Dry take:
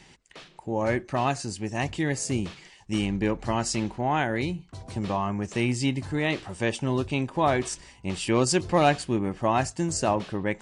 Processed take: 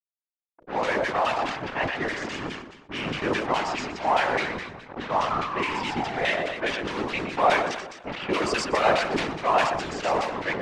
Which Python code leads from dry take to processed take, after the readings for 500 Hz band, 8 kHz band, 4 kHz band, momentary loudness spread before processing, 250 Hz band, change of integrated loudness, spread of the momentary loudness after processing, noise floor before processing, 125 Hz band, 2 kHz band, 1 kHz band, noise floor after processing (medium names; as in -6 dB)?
+1.0 dB, -8.0 dB, +3.0 dB, 9 LU, -5.5 dB, +1.0 dB, 11 LU, -55 dBFS, -10.0 dB, +5.5 dB, +4.0 dB, under -85 dBFS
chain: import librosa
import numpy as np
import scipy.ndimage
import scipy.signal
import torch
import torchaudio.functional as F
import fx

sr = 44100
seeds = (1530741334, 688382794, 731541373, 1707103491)

p1 = fx.delta_hold(x, sr, step_db=-30.0)
p2 = 10.0 ** (-20.0 / 20.0) * (np.abs((p1 / 10.0 ** (-20.0 / 20.0) + 3.0) % 4.0 - 2.0) - 1.0)
p3 = p1 + (p2 * 10.0 ** (-4.0 / 20.0))
p4 = fx.env_lowpass(p3, sr, base_hz=700.0, full_db=-17.0)
p5 = fx.hum_notches(p4, sr, base_hz=60, count=8)
p6 = p5 + fx.echo_feedback(p5, sr, ms=121, feedback_pct=39, wet_db=-5.5, dry=0)
p7 = fx.spec_paint(p6, sr, seeds[0], shape='fall', start_s=5.3, length_s=1.24, low_hz=580.0, high_hz=1300.0, level_db=-33.0)
p8 = fx.filter_lfo_bandpass(p7, sr, shape='saw_down', hz=4.8, low_hz=790.0, high_hz=2900.0, q=0.76)
p9 = scipy.signal.sosfilt(scipy.signal.butter(2, 7600.0, 'lowpass', fs=sr, output='sos'), p8)
p10 = fx.whisperise(p9, sr, seeds[1])
p11 = fx.sustainer(p10, sr, db_per_s=59.0)
y = p11 * 10.0 ** (2.0 / 20.0)